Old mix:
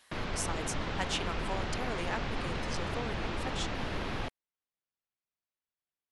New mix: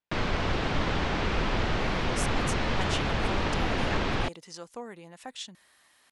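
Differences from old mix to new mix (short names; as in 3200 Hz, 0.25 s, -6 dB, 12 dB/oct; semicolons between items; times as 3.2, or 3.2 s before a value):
speech: entry +1.80 s; background +7.5 dB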